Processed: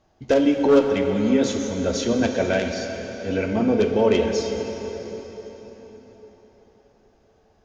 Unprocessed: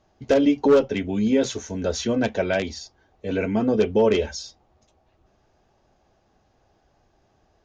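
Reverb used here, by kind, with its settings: plate-style reverb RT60 4.6 s, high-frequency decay 0.8×, DRR 3.5 dB

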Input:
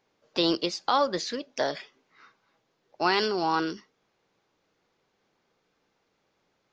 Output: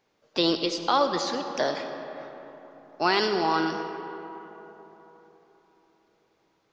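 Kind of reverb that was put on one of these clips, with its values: digital reverb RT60 3.9 s, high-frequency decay 0.45×, pre-delay 35 ms, DRR 6.5 dB; gain +1 dB

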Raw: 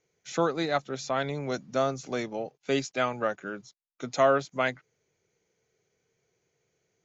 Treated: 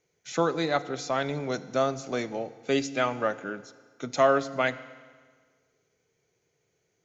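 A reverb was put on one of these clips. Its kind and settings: FDN reverb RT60 1.6 s, low-frequency decay 1.05×, high-frequency decay 0.95×, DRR 13.5 dB; gain +1 dB

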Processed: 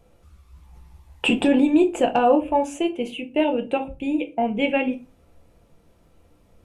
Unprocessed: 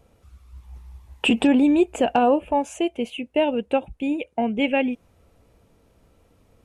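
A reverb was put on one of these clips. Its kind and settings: shoebox room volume 120 m³, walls furnished, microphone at 0.78 m; gain -1 dB

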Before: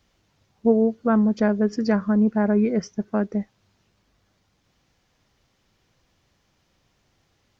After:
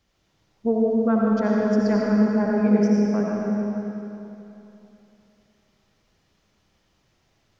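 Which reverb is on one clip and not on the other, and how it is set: digital reverb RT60 3.1 s, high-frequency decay 0.9×, pre-delay 40 ms, DRR -3.5 dB; gain -4.5 dB

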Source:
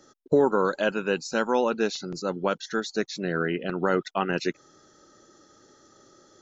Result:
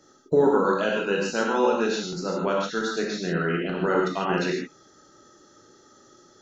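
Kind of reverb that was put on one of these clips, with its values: non-linear reverb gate 0.18 s flat, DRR -2.5 dB; gain -2.5 dB

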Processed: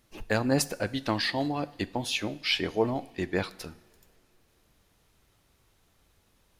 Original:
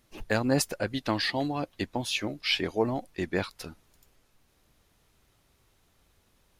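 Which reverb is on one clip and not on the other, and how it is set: two-slope reverb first 0.61 s, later 3 s, from -17 dB, DRR 15 dB

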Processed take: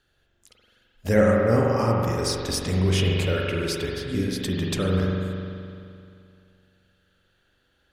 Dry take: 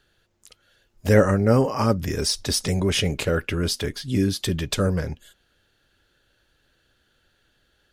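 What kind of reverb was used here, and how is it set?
spring tank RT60 2.5 s, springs 43 ms, chirp 65 ms, DRR -2 dB; gain -5 dB

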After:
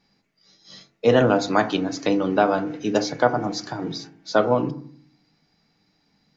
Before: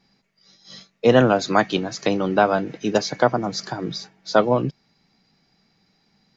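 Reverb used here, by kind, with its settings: FDN reverb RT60 0.54 s, low-frequency decay 1.45×, high-frequency decay 0.35×, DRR 7.5 dB; gain -2.5 dB

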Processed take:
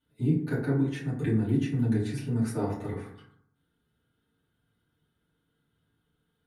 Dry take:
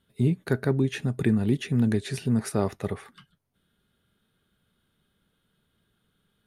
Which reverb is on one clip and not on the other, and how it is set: FDN reverb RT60 0.67 s, low-frequency decay 1.2×, high-frequency decay 0.4×, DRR -10 dB; gain -15 dB

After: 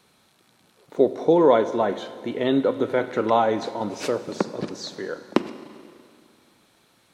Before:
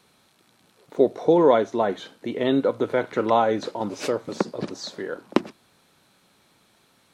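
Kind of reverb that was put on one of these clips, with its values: Schroeder reverb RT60 2.3 s, combs from 33 ms, DRR 12.5 dB

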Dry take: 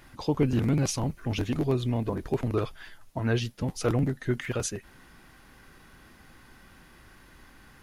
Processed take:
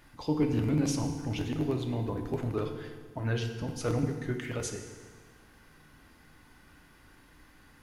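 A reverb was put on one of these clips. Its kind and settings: FDN reverb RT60 1.6 s, low-frequency decay 1.1×, high-frequency decay 0.85×, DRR 4 dB; gain -5.5 dB

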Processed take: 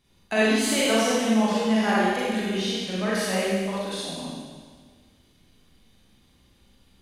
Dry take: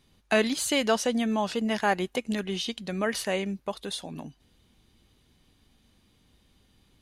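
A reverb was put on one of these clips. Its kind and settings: Schroeder reverb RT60 1.6 s, combs from 32 ms, DRR -8 dB; gain -4.5 dB

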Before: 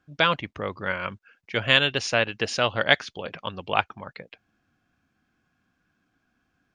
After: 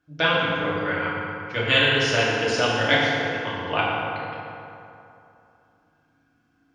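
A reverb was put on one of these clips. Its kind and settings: FDN reverb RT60 2.8 s, high-frequency decay 0.55×, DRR -7 dB; gain -4.5 dB

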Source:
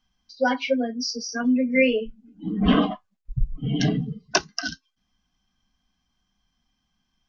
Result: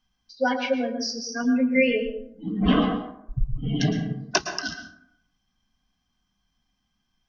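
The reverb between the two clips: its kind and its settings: plate-style reverb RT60 0.7 s, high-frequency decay 0.45×, pre-delay 0.1 s, DRR 7 dB; gain -1.5 dB

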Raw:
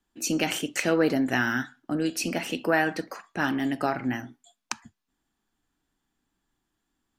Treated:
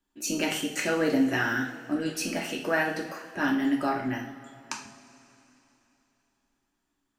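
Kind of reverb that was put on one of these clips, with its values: two-slope reverb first 0.47 s, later 3.4 s, from -18 dB, DRR -1 dB; gain -4.5 dB

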